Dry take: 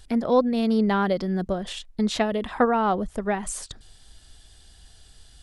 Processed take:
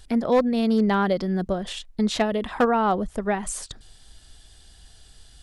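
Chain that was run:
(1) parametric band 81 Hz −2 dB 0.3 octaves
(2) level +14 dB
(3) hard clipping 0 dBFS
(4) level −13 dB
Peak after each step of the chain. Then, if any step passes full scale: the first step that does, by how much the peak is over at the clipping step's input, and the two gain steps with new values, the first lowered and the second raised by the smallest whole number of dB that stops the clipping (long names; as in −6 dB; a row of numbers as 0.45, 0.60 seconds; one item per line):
−8.5, +5.5, 0.0, −13.0 dBFS
step 2, 5.5 dB
step 2 +8 dB, step 4 −7 dB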